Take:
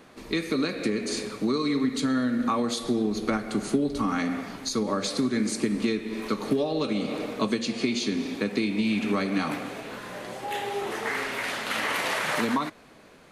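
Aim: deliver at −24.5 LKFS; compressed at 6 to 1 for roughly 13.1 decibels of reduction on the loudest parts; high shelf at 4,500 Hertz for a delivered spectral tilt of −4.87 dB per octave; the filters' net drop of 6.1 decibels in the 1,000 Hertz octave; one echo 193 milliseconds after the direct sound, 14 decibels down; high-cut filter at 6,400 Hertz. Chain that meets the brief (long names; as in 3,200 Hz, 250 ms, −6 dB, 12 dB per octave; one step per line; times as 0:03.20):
low-pass filter 6,400 Hz
parametric band 1,000 Hz −7.5 dB
high-shelf EQ 4,500 Hz −6.5 dB
downward compressor 6 to 1, threshold −36 dBFS
single-tap delay 193 ms −14 dB
level +14.5 dB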